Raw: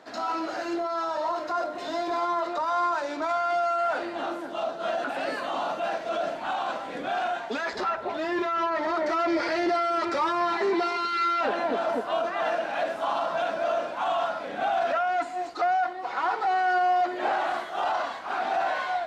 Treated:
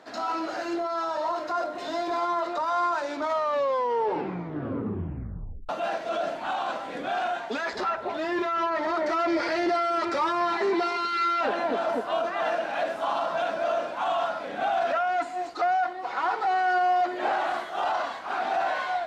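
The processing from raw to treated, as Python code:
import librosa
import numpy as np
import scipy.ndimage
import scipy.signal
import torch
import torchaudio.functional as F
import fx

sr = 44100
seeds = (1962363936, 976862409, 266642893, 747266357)

y = fx.edit(x, sr, fx.tape_stop(start_s=3.13, length_s=2.56), tone=tone)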